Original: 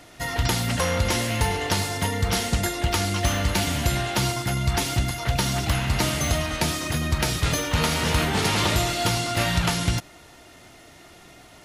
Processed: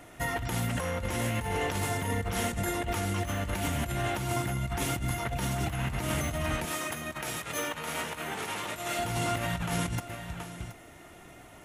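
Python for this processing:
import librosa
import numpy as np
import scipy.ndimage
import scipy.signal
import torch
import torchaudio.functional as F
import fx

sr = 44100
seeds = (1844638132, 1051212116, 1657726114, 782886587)

y = fx.peak_eq(x, sr, hz=4600.0, db=-12.0, octaves=0.88)
y = y + 10.0 ** (-15.0 / 20.0) * np.pad(y, (int(726 * sr / 1000.0), 0))[:len(y)]
y = fx.over_compress(y, sr, threshold_db=-27.0, ratio=-1.0)
y = fx.highpass(y, sr, hz=520.0, slope=6, at=(6.65, 8.99))
y = y * librosa.db_to_amplitude(-4.0)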